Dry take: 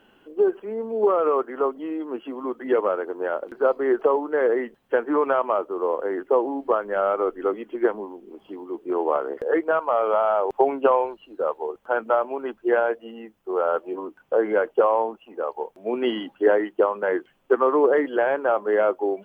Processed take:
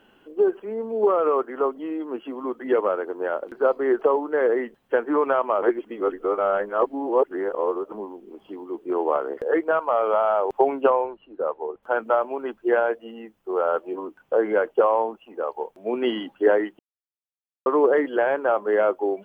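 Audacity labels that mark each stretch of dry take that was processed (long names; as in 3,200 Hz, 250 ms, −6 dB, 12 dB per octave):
5.620000	7.920000	reverse
10.900000	11.830000	high-frequency loss of the air 390 metres
16.790000	17.660000	silence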